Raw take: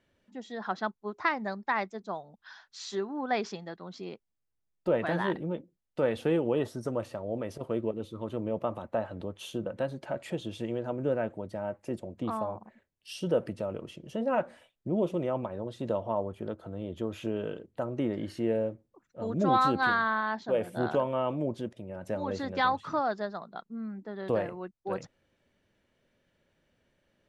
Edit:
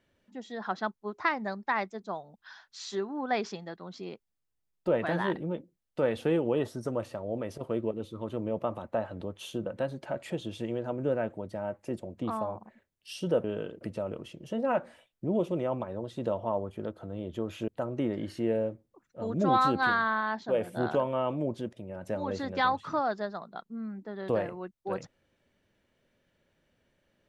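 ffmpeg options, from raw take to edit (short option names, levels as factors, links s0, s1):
-filter_complex "[0:a]asplit=4[s0][s1][s2][s3];[s0]atrim=end=13.442[s4];[s1]atrim=start=17.308:end=17.682[s5];[s2]atrim=start=13.438:end=17.312[s6];[s3]atrim=start=17.678[s7];[s4][s5]acrossfade=d=0.004:c1=hsin:c2=hsin[s8];[s8][s6]acrossfade=d=0.004:c1=hsin:c2=hsin[s9];[s9][s7]acrossfade=d=0.004:c1=hsin:c2=hsin"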